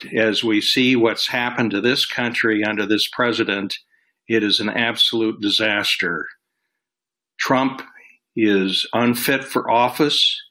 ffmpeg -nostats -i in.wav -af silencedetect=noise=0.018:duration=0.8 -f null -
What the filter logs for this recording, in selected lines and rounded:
silence_start: 6.32
silence_end: 7.39 | silence_duration: 1.08